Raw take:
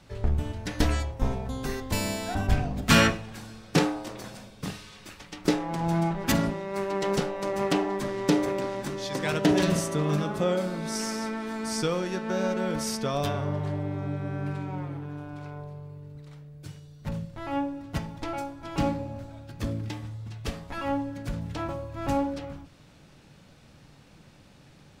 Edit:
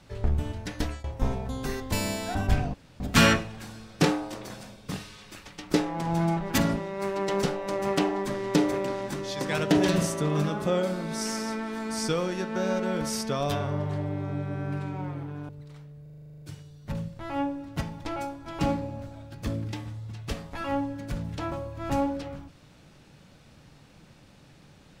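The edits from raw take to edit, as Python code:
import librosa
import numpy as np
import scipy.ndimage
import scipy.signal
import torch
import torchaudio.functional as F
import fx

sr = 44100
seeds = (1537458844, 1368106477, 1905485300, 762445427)

y = fx.edit(x, sr, fx.fade_out_to(start_s=0.57, length_s=0.47, floor_db=-20.0),
    fx.insert_room_tone(at_s=2.74, length_s=0.26),
    fx.cut(start_s=15.23, length_s=0.83),
    fx.stutter(start_s=16.59, slice_s=0.04, count=11), tone=tone)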